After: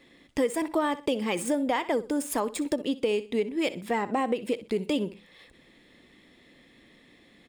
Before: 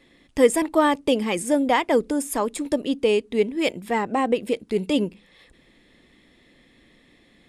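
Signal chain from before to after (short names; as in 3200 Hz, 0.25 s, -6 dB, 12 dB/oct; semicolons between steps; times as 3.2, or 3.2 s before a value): median filter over 3 samples; low shelf 67 Hz -9.5 dB; feedback echo 62 ms, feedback 21%, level -17 dB; compressor 4:1, threshold -24 dBFS, peak gain reduction 11.5 dB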